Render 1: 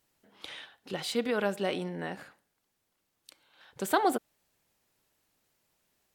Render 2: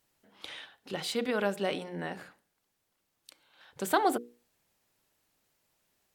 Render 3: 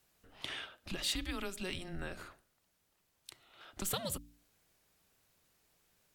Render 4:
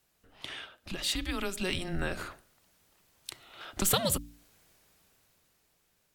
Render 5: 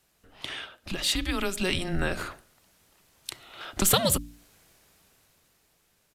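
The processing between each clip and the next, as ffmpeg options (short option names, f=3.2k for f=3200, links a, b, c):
-af "bandreject=f=60:t=h:w=6,bandreject=f=120:t=h:w=6,bandreject=f=180:t=h:w=6,bandreject=f=240:t=h:w=6,bandreject=f=300:t=h:w=6,bandreject=f=360:t=h:w=6,bandreject=f=420:t=h:w=6,bandreject=f=480:t=h:w=6"
-filter_complex "[0:a]acrossover=split=130|3000[a][b][c];[b]acompressor=threshold=-41dB:ratio=6[d];[a][d][c]amix=inputs=3:normalize=0,afreqshift=-190,volume=2dB"
-af "dynaudnorm=f=260:g=11:m=10dB"
-af "aresample=32000,aresample=44100,volume=5dB"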